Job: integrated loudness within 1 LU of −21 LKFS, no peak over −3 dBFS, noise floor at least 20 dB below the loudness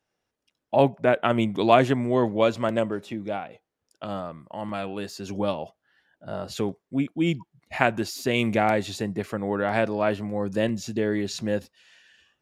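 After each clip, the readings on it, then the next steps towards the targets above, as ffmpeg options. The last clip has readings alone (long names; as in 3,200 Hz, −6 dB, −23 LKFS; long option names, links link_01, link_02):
integrated loudness −25.5 LKFS; sample peak −2.5 dBFS; target loudness −21.0 LKFS
→ -af "volume=4.5dB,alimiter=limit=-3dB:level=0:latency=1"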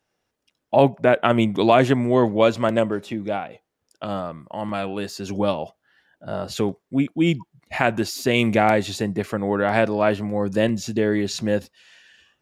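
integrated loudness −21.5 LKFS; sample peak −3.0 dBFS; background noise floor −78 dBFS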